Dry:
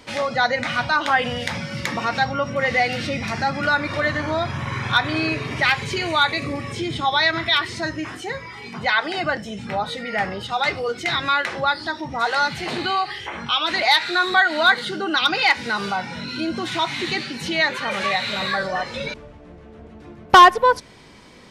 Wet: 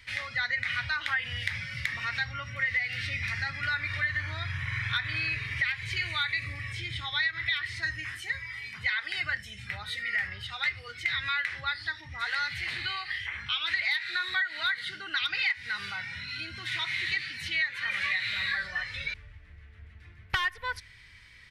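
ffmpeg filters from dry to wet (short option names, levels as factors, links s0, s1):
-filter_complex "[0:a]asettb=1/sr,asplit=3[s0][s1][s2];[s0]atrim=end=7.834[s3];[s1]atrim=start=7.83:end=10.28,asetpts=PTS-STARTPTS,afade=t=in:d=0.004:c=qsin,afade=t=out:st=2.446:d=0.004:c=qsin,highshelf=f=7800:g=9.5[s4];[s2]atrim=start=10.276[s5];[s3][s4]acrossfade=d=0.004:c1=hsin:c2=qsin[s6];[s6][s5]acrossfade=d=0.004:c1=qsin:c2=hsin,firequalizer=gain_entry='entry(100,0);entry(150,-15);entry(230,-24);entry(700,-24);entry(1900,4);entry(2700,-3);entry(4300,-5);entry(6700,-11);entry(10000,-6)':delay=0.05:min_phase=1,acompressor=threshold=0.0708:ratio=12,volume=0.794"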